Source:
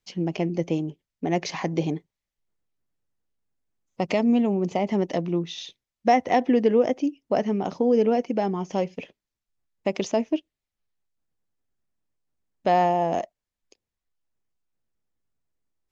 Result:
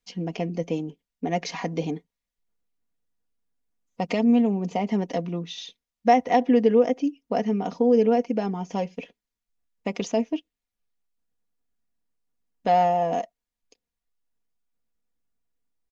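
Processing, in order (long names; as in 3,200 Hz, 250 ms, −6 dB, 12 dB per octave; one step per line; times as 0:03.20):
comb filter 4.2 ms, depth 60%
level −2.5 dB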